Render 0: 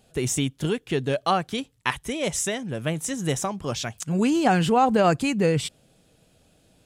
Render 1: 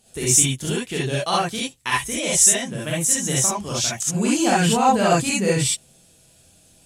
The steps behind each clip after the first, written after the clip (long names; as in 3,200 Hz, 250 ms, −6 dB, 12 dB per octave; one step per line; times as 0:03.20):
parametric band 8,900 Hz +12.5 dB 1.9 octaves
reverb whose tail is shaped and stops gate 90 ms rising, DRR −6 dB
level −5 dB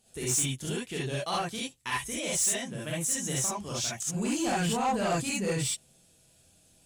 soft clipping −14 dBFS, distortion −13 dB
level −8 dB